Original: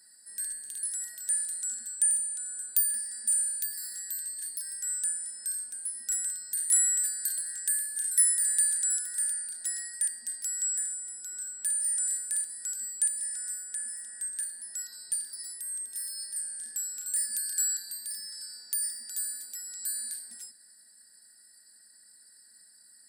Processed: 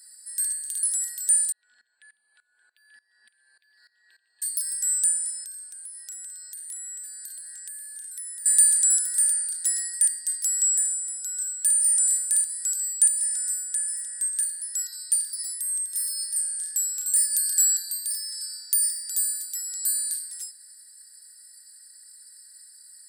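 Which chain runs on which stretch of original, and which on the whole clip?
1.52–4.42 inverse Chebyshev low-pass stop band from 6100 Hz + dB-ramp tremolo swelling 3.4 Hz, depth 20 dB
5.44–8.46 HPF 560 Hz + tilt -2.5 dB/oct + compressor 4:1, threshold -45 dBFS
whole clip: HPF 650 Hz 12 dB/oct; high shelf 2600 Hz +11 dB; gain -2 dB

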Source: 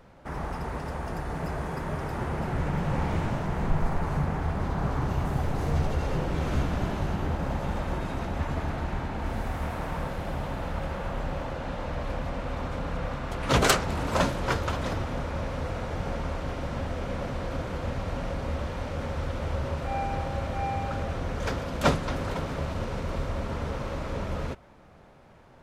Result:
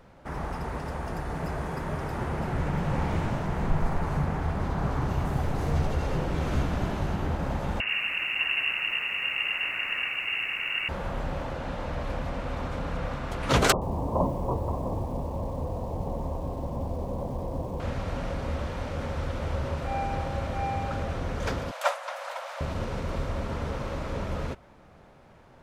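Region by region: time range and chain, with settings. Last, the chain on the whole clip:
7.8–10.89 inverted band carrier 2800 Hz + lo-fi delay 90 ms, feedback 35%, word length 9-bit, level -8 dB
13.72–17.8 steep low-pass 1100 Hz 96 dB/oct + lo-fi delay 93 ms, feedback 55%, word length 7-bit, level -15 dB
21.71–22.61 steep high-pass 550 Hz 72 dB/oct + dynamic EQ 4500 Hz, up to -6 dB, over -44 dBFS, Q 0.91
whole clip: dry

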